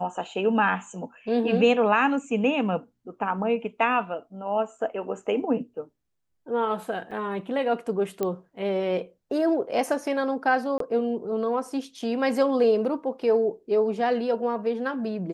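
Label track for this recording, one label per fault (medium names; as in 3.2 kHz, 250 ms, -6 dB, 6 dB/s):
7.110000	7.110000	dropout 4.4 ms
8.230000	8.230000	pop -14 dBFS
10.780000	10.800000	dropout 23 ms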